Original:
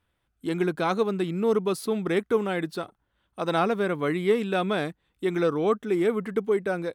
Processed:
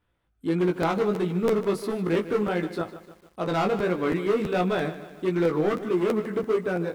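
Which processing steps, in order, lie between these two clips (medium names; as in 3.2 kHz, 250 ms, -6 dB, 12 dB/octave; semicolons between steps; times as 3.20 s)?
treble shelf 2.7 kHz -8 dB; hard clipper -22 dBFS, distortion -12 dB; chorus 1.5 Hz, delay 16.5 ms, depth 3.3 ms; on a send at -20.5 dB: reverberation RT60 0.80 s, pre-delay 22 ms; on the sum: crackling interface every 0.33 s, samples 512, repeat, from 0.81 s; bit-crushed delay 151 ms, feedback 55%, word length 9-bit, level -14 dB; trim +5 dB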